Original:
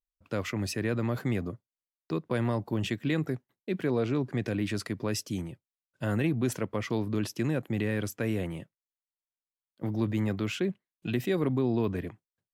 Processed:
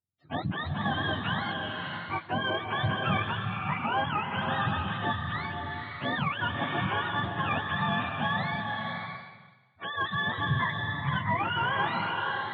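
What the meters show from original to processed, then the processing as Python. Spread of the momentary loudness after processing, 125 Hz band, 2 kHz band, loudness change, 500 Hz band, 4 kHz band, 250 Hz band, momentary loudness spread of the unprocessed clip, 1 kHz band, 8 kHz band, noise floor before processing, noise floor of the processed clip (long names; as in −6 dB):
7 LU, −1.0 dB, +10.5 dB, +1.0 dB, −5.5 dB, +8.5 dB, −5.5 dB, 8 LU, +14.5 dB, below −30 dB, below −85 dBFS, −54 dBFS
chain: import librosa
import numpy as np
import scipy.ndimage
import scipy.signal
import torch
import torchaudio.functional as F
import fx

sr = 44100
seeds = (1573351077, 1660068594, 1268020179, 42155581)

p1 = fx.octave_mirror(x, sr, pivot_hz=610.0)
p2 = np.clip(p1, -10.0 ** (-27.0 / 20.0), 10.0 ** (-27.0 / 20.0))
p3 = p1 + F.gain(torch.from_numpy(p2), -9.0).numpy()
p4 = scipy.signal.sosfilt(scipy.signal.butter(2, 2700.0, 'lowpass', fs=sr, output='sos'), p3)
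y = fx.rev_bloom(p4, sr, seeds[0], attack_ms=610, drr_db=1.5)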